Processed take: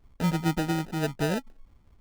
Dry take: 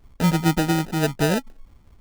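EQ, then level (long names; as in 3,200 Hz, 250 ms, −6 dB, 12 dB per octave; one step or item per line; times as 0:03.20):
high-shelf EQ 5,400 Hz −4 dB
−6.5 dB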